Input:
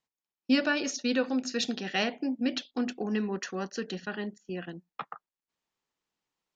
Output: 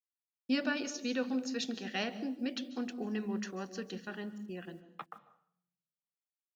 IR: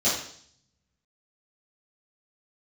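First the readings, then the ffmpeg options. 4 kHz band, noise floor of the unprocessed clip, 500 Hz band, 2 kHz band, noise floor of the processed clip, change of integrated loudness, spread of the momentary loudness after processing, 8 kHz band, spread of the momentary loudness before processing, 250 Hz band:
−7.0 dB, below −85 dBFS, −6.5 dB, −7.0 dB, below −85 dBFS, −6.0 dB, 15 LU, can't be measured, 15 LU, −5.5 dB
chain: -filter_complex "[0:a]acrusher=bits=10:mix=0:aa=0.000001,asplit=2[link_01][link_02];[1:a]atrim=start_sample=2205,lowshelf=frequency=380:gain=10.5,adelay=132[link_03];[link_02][link_03]afir=irnorm=-1:irlink=0,volume=-30dB[link_04];[link_01][link_04]amix=inputs=2:normalize=0,volume=-7dB"

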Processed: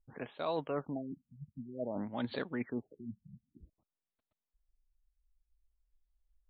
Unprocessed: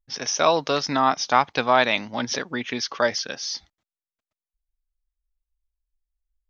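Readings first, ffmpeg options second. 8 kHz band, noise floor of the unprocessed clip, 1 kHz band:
can't be measured, below −85 dBFS, −23.0 dB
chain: -af "equalizer=frequency=2300:width=0.45:gain=-8.5,areverse,acompressor=threshold=-38dB:ratio=5,areverse,afftfilt=real='re*lt(b*sr/1024,210*pow(4600/210,0.5+0.5*sin(2*PI*0.53*pts/sr)))':imag='im*lt(b*sr/1024,210*pow(4600/210,0.5+0.5*sin(2*PI*0.53*pts/sr)))':win_size=1024:overlap=0.75,volume=4dB"

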